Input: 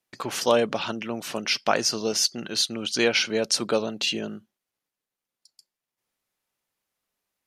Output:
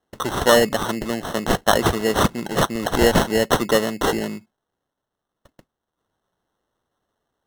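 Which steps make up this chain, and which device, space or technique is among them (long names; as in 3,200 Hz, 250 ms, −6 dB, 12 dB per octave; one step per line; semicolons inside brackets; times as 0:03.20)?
crushed at another speed (tape speed factor 0.5×; decimation without filtering 37×; tape speed factor 2×)
level +6 dB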